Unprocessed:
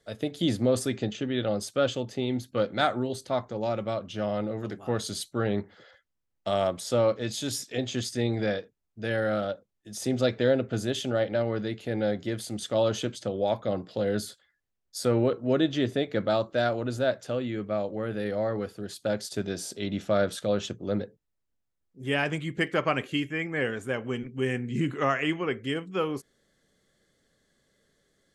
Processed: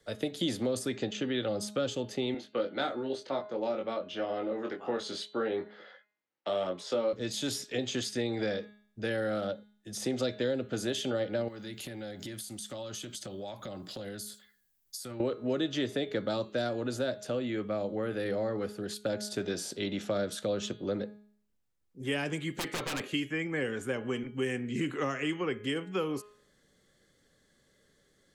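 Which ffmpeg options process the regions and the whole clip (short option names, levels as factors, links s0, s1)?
-filter_complex "[0:a]asettb=1/sr,asplit=3[s0][s1][s2];[s0]atrim=end=2.344[s3];[s1]atrim=start=2.34:end=7.13,asetpts=PTS-STARTPTS,afade=t=in:d=0.004:c=qsin,afade=t=out:st=4.786:d=0.004:c=qsin,highpass=340,lowpass=3500,asplit=2[s4][s5];[s5]adelay=22,volume=0.631[s6];[s4][s6]amix=inputs=2:normalize=0,atrim=end_sample=211239[s7];[s2]atrim=start=7.126[s8];[s3][s7]acrossfade=d=0.004:c1=hsin:c2=qsin[s9];[s9][s8]acrossfade=d=0.004:c1=qsin:c2=hsin,asettb=1/sr,asplit=3[s10][s11][s12];[s10]atrim=end=11.484[s13];[s11]atrim=start=11.48:end=15.2,asetpts=PTS-STARTPTS,afade=t=in:d=0.004:c=qsin,afade=t=out:st=3.716:d=0.004:c=qsin,aemphasis=mode=production:type=75fm,bandreject=f=470:w=5.1,acompressor=threshold=0.0126:ratio=12:attack=3.2:release=140:knee=1:detection=peak[s14];[s12]atrim=start=15.196[s15];[s13][s14]acrossfade=d=0.004:c1=hsin:c2=qsin[s16];[s16][s15]acrossfade=d=0.004:c1=qsin:c2=hsin,asettb=1/sr,asplit=3[s17][s18][s19];[s17]atrim=end=22.504[s20];[s18]atrim=start=22.5:end=23,asetpts=PTS-STARTPTS,afade=t=in:d=0.004:c=qsin,afade=t=out:st=0.496:d=0.004:c=qsin,aemphasis=mode=production:type=cd,aeval=exprs='0.0422*(abs(mod(val(0)/0.0422+3,4)-2)-1)':c=same[s21];[s19]atrim=start=22.996[s22];[s20][s21]acrossfade=d=0.004:c1=hsin:c2=qsin[s23];[s23][s22]acrossfade=d=0.004:c1=qsin:c2=hsin,bandreject=f=670:w=15,bandreject=f=208.5:t=h:w=4,bandreject=f=417:t=h:w=4,bandreject=f=625.5:t=h:w=4,bandreject=f=834:t=h:w=4,bandreject=f=1042.5:t=h:w=4,bandreject=f=1251:t=h:w=4,bandreject=f=1459.5:t=h:w=4,bandreject=f=1668:t=h:w=4,bandreject=f=1876.5:t=h:w=4,bandreject=f=2085:t=h:w=4,bandreject=f=2293.5:t=h:w=4,bandreject=f=2502:t=h:w=4,bandreject=f=2710.5:t=h:w=4,bandreject=f=2919:t=h:w=4,bandreject=f=3127.5:t=h:w=4,bandreject=f=3336:t=h:w=4,bandreject=f=3544.5:t=h:w=4,bandreject=f=3753:t=h:w=4,bandreject=f=3961.5:t=h:w=4,bandreject=f=4170:t=h:w=4,bandreject=f=4378.5:t=h:w=4,bandreject=f=4587:t=h:w=4,acrossover=split=210|420|4400[s24][s25][s26][s27];[s24]acompressor=threshold=0.00447:ratio=4[s28];[s25]acompressor=threshold=0.0158:ratio=4[s29];[s26]acompressor=threshold=0.0141:ratio=4[s30];[s27]acompressor=threshold=0.00794:ratio=4[s31];[s28][s29][s30][s31]amix=inputs=4:normalize=0,volume=1.26"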